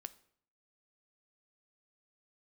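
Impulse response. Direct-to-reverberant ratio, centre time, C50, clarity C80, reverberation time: 13.0 dB, 2 ms, 18.0 dB, 21.5 dB, 0.60 s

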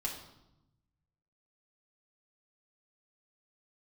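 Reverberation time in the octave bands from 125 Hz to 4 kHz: 1.8, 1.3, 0.90, 0.85, 0.65, 0.75 s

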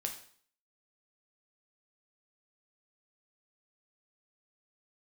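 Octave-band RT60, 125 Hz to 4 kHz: 0.55, 0.55, 0.50, 0.55, 0.50, 0.50 s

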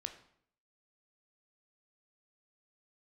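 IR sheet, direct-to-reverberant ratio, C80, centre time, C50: 6.5 dB, 14.0 dB, 10 ms, 11.0 dB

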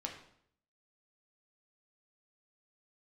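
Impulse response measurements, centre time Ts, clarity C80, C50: 23 ms, 10.0 dB, 7.0 dB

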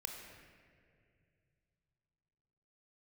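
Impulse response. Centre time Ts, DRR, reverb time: 69 ms, 2.0 dB, 2.3 s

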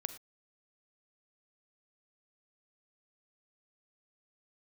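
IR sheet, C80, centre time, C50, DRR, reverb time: 15.0 dB, 6 ms, 12.0 dB, 11.0 dB, not exponential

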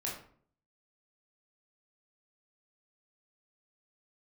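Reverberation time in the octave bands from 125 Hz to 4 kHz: 0.70, 0.65, 0.55, 0.50, 0.40, 0.35 s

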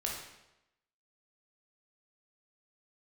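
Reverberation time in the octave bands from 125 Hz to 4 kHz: 0.90, 0.90, 0.95, 0.90, 0.85, 0.80 s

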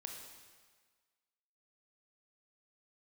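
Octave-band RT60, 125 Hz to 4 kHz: 1.4, 1.4, 1.5, 1.6, 1.5, 1.4 s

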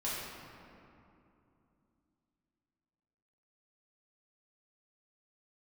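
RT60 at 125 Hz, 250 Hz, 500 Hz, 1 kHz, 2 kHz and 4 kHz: 3.5, 3.8, 2.9, 2.7, 2.1, 1.4 s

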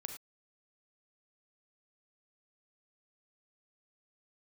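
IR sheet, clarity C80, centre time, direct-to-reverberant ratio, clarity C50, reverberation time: 10.0 dB, 18 ms, 5.0 dB, 6.5 dB, not exponential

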